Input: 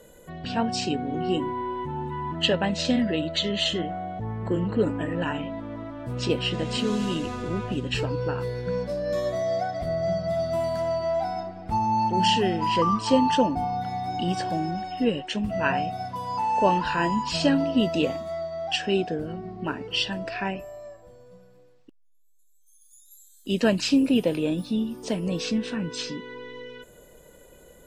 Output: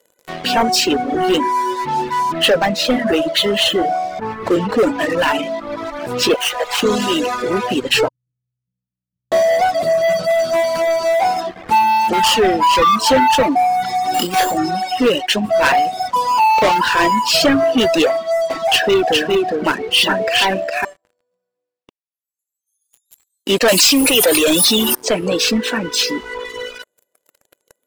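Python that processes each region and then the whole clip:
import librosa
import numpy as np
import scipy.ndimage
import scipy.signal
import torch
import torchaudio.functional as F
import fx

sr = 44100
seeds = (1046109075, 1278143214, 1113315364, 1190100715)

y = fx.chain(x, sr, fx.lowpass(hz=2400.0, slope=6),
    fx.hum_notches(base_hz=60, count=7), at=(2.23, 4.47))
y = fx.chain(y, sr, fx.dead_time(dead_ms=0.11),
    fx.highpass(hz=540.0, slope=24),
    fx.high_shelf(hz=5300.0, db=-7.5), at=(6.34, 6.83))
y = fx.chain(y, sr, fx.law_mismatch(coded='A'),
    fx.cheby2_lowpass(hz=690.0, order=4, stop_db=80), at=(8.08, 9.32))
y = fx.chain(y, sr, fx.over_compress(threshold_db=-28.0, ratio=-0.5),
    fx.sample_hold(seeds[0], rate_hz=8000.0, jitter_pct=0),
    fx.doubler(ms=28.0, db=-7), at=(14.14, 14.58))
y = fx.chain(y, sr, fx.lowpass(hz=4600.0, slope=12),
    fx.echo_single(ms=409, db=-4.0), at=(18.09, 20.85))
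y = fx.chain(y, sr, fx.riaa(side='recording'),
    fx.quant_float(bits=2),
    fx.env_flatten(amount_pct=70), at=(23.68, 24.95))
y = scipy.signal.sosfilt(scipy.signal.butter(2, 360.0, 'highpass', fs=sr, output='sos'), y)
y = fx.leveller(y, sr, passes=5)
y = fx.dereverb_blind(y, sr, rt60_s=1.3)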